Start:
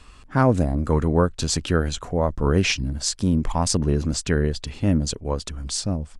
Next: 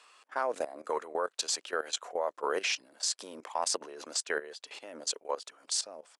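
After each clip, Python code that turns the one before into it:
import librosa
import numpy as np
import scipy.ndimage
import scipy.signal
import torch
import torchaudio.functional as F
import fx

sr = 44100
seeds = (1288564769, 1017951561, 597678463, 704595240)

y = scipy.signal.sosfilt(scipy.signal.butter(4, 500.0, 'highpass', fs=sr, output='sos'), x)
y = fx.level_steps(y, sr, step_db=15)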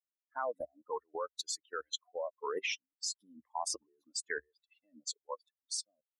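y = fx.bin_expand(x, sr, power=3.0)
y = fx.peak_eq(y, sr, hz=68.0, db=14.0, octaves=0.59)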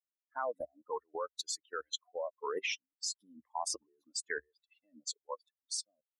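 y = x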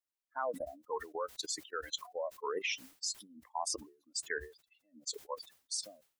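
y = fx.sustainer(x, sr, db_per_s=140.0)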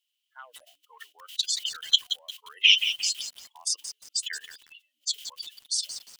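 y = fx.highpass_res(x, sr, hz=3000.0, q=11.0)
y = fx.echo_crushed(y, sr, ms=176, feedback_pct=35, bits=8, wet_db=-9)
y = F.gain(torch.from_numpy(y), 7.0).numpy()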